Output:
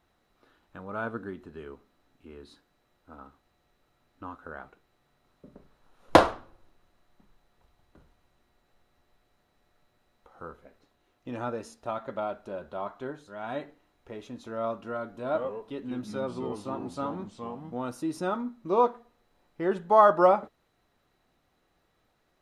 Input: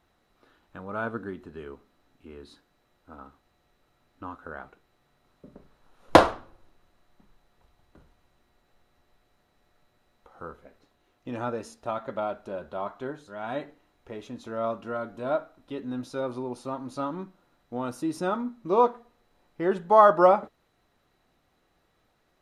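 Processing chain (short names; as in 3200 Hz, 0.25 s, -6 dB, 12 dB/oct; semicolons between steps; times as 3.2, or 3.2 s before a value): 15.25–17.75 echoes that change speed 92 ms, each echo -3 st, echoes 2, each echo -6 dB; gain -2 dB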